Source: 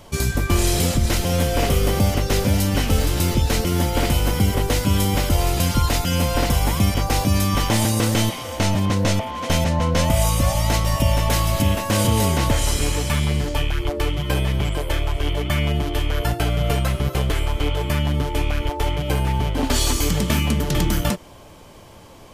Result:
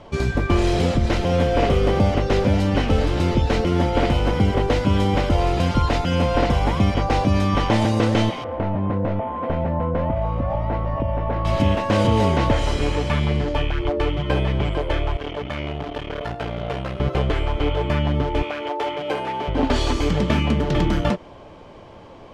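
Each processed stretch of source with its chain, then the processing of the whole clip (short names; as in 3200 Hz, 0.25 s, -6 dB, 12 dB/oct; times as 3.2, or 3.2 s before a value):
8.44–11.45 LPF 1400 Hz + compressor 4:1, threshold -19 dBFS
15.17–17 notches 50/100/150/200/250/300/350/400 Hz + tube stage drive 21 dB, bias 0.75 + HPF 95 Hz 6 dB/oct
18.43–19.48 HPF 350 Hz + high shelf 11000 Hz +6.5 dB
whole clip: LPF 3600 Hz 12 dB/oct; bell 510 Hz +5.5 dB 2.6 oct; gain -1.5 dB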